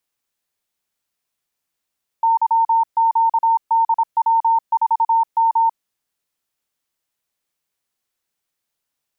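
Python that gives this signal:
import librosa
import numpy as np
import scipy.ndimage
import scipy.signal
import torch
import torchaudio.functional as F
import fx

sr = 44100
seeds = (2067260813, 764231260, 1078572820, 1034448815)

y = fx.morse(sr, text='YQDW4M', wpm=26, hz=910.0, level_db=-12.0)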